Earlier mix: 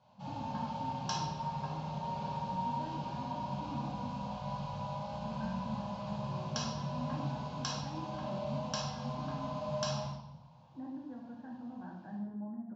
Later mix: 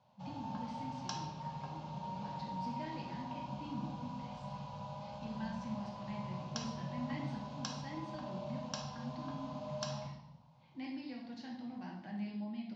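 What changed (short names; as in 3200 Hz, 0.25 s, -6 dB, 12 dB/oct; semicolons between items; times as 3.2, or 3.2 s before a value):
speech: remove steep low-pass 1700 Hz 96 dB/oct; background: send -8.0 dB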